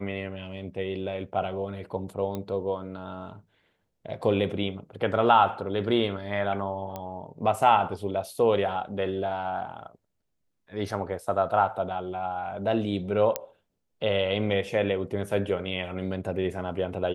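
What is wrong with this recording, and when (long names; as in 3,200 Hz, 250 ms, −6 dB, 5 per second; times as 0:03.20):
0:02.35: click −20 dBFS
0:06.96: click −20 dBFS
0:13.36: click −10 dBFS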